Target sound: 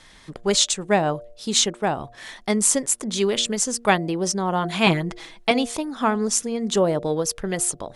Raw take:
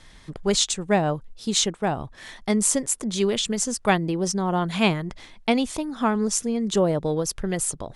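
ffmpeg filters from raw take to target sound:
-filter_complex "[0:a]lowshelf=f=180:g=-9,asettb=1/sr,asplit=3[a][b][c];[a]atrim=end=4.864[d];[b]atrim=start=4.86:end=5.51,asetpts=PTS-STARTPTS,afade=t=in:d=0.004:c=qsin,afade=t=out:st=0.646:d=0.004:c=qsin,aecho=1:1:6.1:0.88,atrim=end_sample=28665[e];[c]atrim=start=5.506[f];[d][e]acrossfade=d=0.004:c1=hsin:c2=qsin[g];[g][f]acrossfade=d=0.004:c1=qsin:c2=hsin,bandreject=f=117.7:t=h:w=4,bandreject=f=235.4:t=h:w=4,bandreject=f=353.1:t=h:w=4,bandreject=f=470.8:t=h:w=4,bandreject=f=588.5:t=h:w=4,bandreject=f=706.2:t=h:w=4,volume=3dB"

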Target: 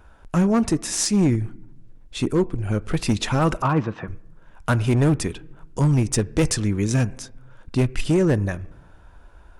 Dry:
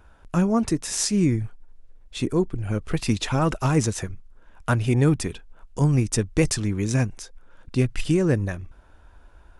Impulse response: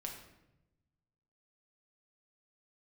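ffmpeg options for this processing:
-filter_complex "[0:a]asettb=1/sr,asplit=3[a][b][c];[a]atrim=end=3.624[d];[b]atrim=start=3.62:end=4.08,asetpts=PTS-STARTPTS,afade=t=in:d=0.004:c=qsin,afade=t=out:st=0.456:d=0.004:c=qsin,highpass=150,equalizer=f=240:t=q:w=4:g=-4,equalizer=f=410:t=q:w=4:g=-7,equalizer=f=1.1k:t=q:w=4:g=7,equalizer=f=2.1k:t=q:w=4:g=-6,lowpass=f=2.7k:w=0.5412,lowpass=f=2.7k:w=1.3066[e];[c]atrim=start=4.076[f];[d][e]acrossfade=d=0.004:c1=hsin:c2=qsin[g];[g][f]acrossfade=d=0.004:c1=qsin:c2=hsin,asplit=2[h][i];[1:a]atrim=start_sample=2205,lowpass=2.1k,lowshelf=f=200:g=-9.5[j];[i][j]afir=irnorm=-1:irlink=0,volume=-12dB[k];[h][k]amix=inputs=2:normalize=0,asoftclip=type=hard:threshold=-15dB,volume=2dB"

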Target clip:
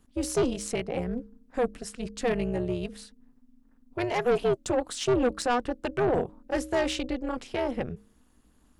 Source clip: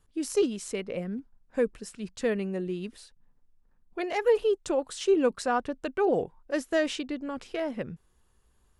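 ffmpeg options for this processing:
-af "bandreject=f=103.5:t=h:w=4,bandreject=f=207:t=h:w=4,bandreject=f=310.5:t=h:w=4,tremolo=f=250:d=0.889,aeval=exprs='(tanh(17.8*val(0)+0.15)-tanh(0.15))/17.8':c=same,volume=7.5dB"

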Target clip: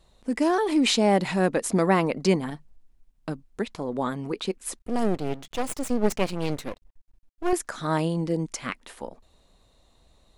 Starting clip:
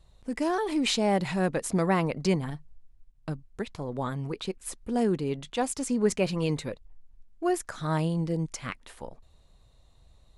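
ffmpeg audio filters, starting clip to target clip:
-filter_complex "[0:a]lowshelf=f=170:t=q:w=1.5:g=-7,asettb=1/sr,asplit=3[a][b][c];[a]atrim=end=4.794[d];[b]atrim=start=4.79:end=7.53,asetpts=PTS-STARTPTS,afade=t=in:d=0.004:c=qsin,afade=t=out:st=2.736:d=0.004:c=qsin,aeval=exprs='max(val(0),0)':c=same[e];[c]atrim=start=7.526[f];[d][e]acrossfade=d=0.004:c1=hsin:c2=qsin[g];[g][f]acrossfade=d=0.004:c1=qsin:c2=hsin,volume=4dB"

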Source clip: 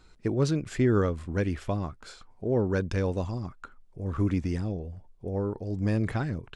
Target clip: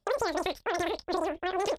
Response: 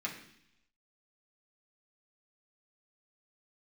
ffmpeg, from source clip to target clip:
-filter_complex "[0:a]agate=range=-23dB:threshold=-46dB:ratio=16:detection=peak,equalizer=f=160:t=o:w=0.67:g=10,equalizer=f=400:t=o:w=0.67:g=-5,equalizer=f=1k:t=o:w=0.67:g=7,acompressor=threshold=-25dB:ratio=6,asplit=2[a][b];[b]aecho=0:1:89:0.15[c];[a][c]amix=inputs=2:normalize=0,aresample=8000,aresample=44100,asetrate=161847,aresample=44100"

